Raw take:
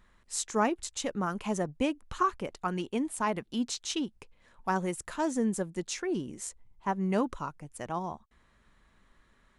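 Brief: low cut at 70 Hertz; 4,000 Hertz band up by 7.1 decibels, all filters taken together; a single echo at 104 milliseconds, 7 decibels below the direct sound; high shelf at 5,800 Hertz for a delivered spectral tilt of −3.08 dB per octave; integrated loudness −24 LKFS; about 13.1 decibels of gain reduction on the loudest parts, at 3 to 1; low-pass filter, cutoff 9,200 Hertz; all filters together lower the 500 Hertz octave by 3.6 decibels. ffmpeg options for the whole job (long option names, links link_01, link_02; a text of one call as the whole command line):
ffmpeg -i in.wav -af "highpass=70,lowpass=9200,equalizer=frequency=500:width_type=o:gain=-5,equalizer=frequency=4000:width_type=o:gain=7,highshelf=frequency=5800:gain=6,acompressor=threshold=-41dB:ratio=3,aecho=1:1:104:0.447,volume=17.5dB" out.wav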